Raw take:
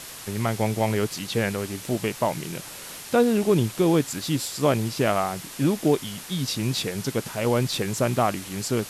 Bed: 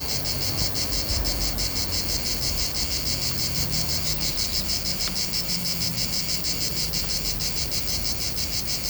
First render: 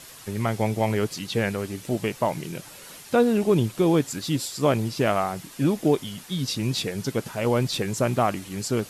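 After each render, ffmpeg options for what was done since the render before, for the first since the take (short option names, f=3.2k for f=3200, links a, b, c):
-af "afftdn=nr=7:nf=-40"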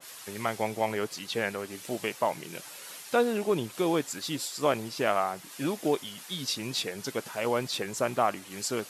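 -af "highpass=f=690:p=1,adynamicequalizer=threshold=0.00891:dfrequency=1900:dqfactor=0.7:tfrequency=1900:tqfactor=0.7:attack=5:release=100:ratio=0.375:range=3:mode=cutabove:tftype=highshelf"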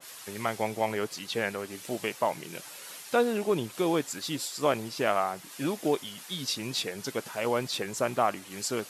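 -af anull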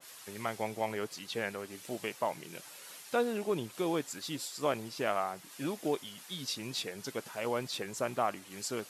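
-af "volume=-5.5dB"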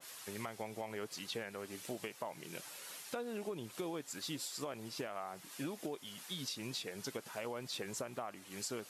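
-af "alimiter=level_in=1.5dB:limit=-24dB:level=0:latency=1:release=350,volume=-1.5dB,acompressor=threshold=-38dB:ratio=6"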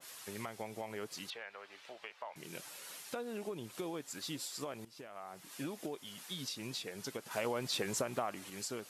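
-filter_complex "[0:a]asettb=1/sr,asplit=3[a][b][c];[a]atrim=end=1.304[d];[b]atrim=start=1.3:end=2.36,asetpts=PTS-STARTPTS,afade=t=in:d=0.004:c=qsin,afade=t=out:st=1.056:d=0.004:c=qsin,acrossover=split=560 4400:gain=0.0708 1 0.0631[e][f][g];[e][f][g]amix=inputs=3:normalize=0[h];[c]atrim=start=2.356[i];[d][h]acrossfade=d=0.004:c1=hsin:c2=qsin[j];[j][i]acrossfade=d=0.004:c1=qsin:c2=hsin,asplit=4[k][l][m][n];[k]atrim=end=4.85,asetpts=PTS-STARTPTS,afade=t=out:st=4.846:d=0.004:c=hsin:silence=0.149624[o];[l]atrim=start=4.85:end=7.312,asetpts=PTS-STARTPTS,afade=t=in:d=0.69:silence=0.149624[p];[m]atrim=start=7.308:end=8.502,asetpts=PTS-STARTPTS,volume=6dB[q];[n]atrim=start=8.498[r];[o][p]concat=n=2:v=0:a=1[s];[s][q]acrossfade=d=0.004:c1=hsin:c2=hsin[t];[t][r]acrossfade=d=0.004:c1=hsin:c2=hsin"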